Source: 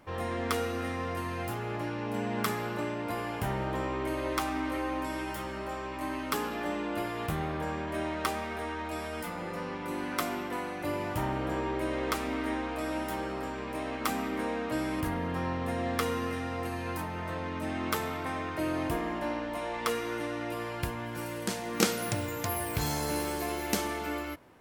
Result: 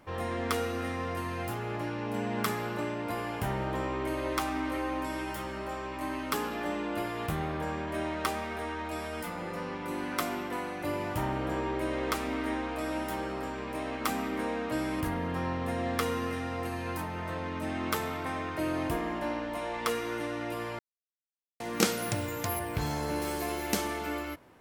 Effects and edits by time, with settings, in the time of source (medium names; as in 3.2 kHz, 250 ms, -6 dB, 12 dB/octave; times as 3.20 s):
20.79–21.60 s: mute
22.59–23.22 s: treble shelf 4.4 kHz -10.5 dB